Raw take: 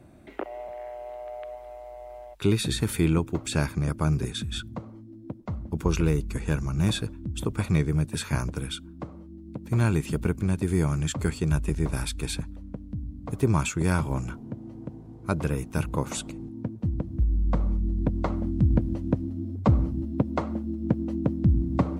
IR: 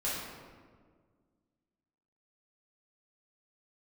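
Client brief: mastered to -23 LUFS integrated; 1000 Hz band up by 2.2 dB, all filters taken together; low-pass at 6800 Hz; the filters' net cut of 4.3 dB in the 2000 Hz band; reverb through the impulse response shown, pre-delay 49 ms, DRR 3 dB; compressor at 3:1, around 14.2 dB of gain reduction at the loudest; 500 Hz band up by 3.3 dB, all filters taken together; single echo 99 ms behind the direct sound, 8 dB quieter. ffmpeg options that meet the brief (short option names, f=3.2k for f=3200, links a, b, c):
-filter_complex "[0:a]lowpass=6.8k,equalizer=f=500:t=o:g=4,equalizer=f=1k:t=o:g=3.5,equalizer=f=2k:t=o:g=-8,acompressor=threshold=-36dB:ratio=3,aecho=1:1:99:0.398,asplit=2[a][b];[1:a]atrim=start_sample=2205,adelay=49[c];[b][c]afir=irnorm=-1:irlink=0,volume=-9dB[d];[a][d]amix=inputs=2:normalize=0,volume=12.5dB"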